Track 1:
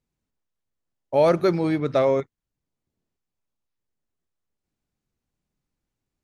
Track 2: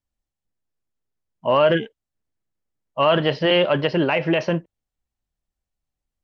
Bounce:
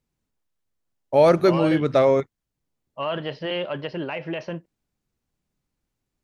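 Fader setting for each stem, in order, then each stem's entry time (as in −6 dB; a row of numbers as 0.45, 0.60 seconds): +2.5, −10.0 decibels; 0.00, 0.00 seconds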